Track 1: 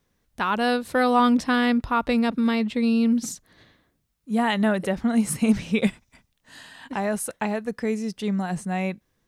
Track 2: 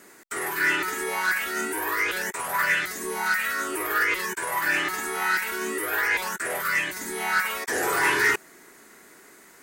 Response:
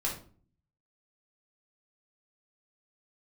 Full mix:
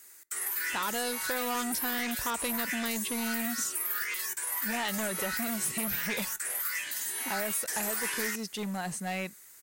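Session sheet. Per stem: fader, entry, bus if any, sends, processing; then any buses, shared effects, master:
−2.5 dB, 0.35 s, no send, high-shelf EQ 3,600 Hz +7.5 dB; hard clipping −22.5 dBFS, distortion −8 dB; low-shelf EQ 370 Hz −8.5 dB
0.0 dB, 0.00 s, send −22.5 dB, first difference; noise that follows the level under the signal 31 dB; low-shelf EQ 460 Hz +7.5 dB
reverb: on, RT60 0.45 s, pre-delay 3 ms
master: downward compressor, threshold −28 dBFS, peak gain reduction 4.5 dB

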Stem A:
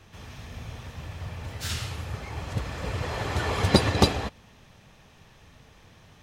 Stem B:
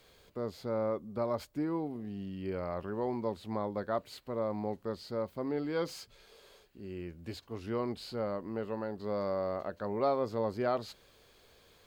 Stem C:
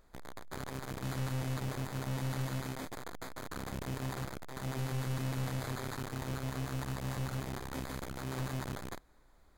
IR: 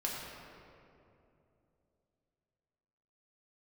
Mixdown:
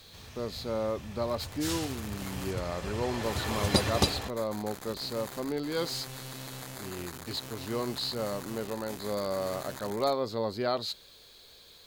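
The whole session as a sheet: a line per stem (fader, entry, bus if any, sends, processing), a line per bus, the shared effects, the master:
−7.0 dB, 0.00 s, no send, no processing
+1.0 dB, 0.00 s, no send, parametric band 4,000 Hz +11.5 dB 0.4 octaves
−3.0 dB, 1.15 s, muted 0:02.51–0:03.23, no send, low-shelf EQ 170 Hz −12 dB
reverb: not used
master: high-shelf EQ 4,300 Hz +9 dB

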